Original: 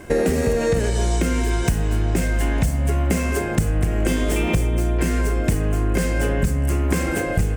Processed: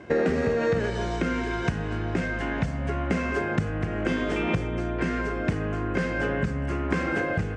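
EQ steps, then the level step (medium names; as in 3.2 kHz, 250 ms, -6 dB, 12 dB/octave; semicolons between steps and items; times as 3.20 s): dynamic bell 1.4 kHz, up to +6 dB, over -44 dBFS, Q 1.5; band-pass 100–5800 Hz; distance through air 100 m; -4.0 dB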